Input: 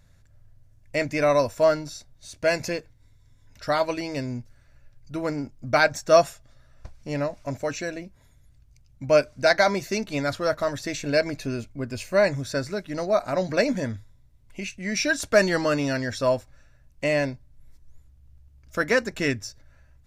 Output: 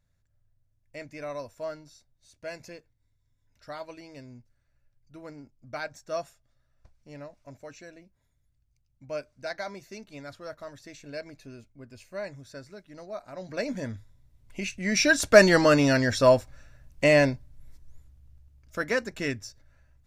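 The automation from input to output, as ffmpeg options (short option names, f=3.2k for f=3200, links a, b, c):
-af "volume=4dB,afade=t=in:st=13.36:d=0.54:silence=0.281838,afade=t=in:st=13.9:d=1.59:silence=0.354813,afade=t=out:st=17.24:d=1.54:silence=0.334965"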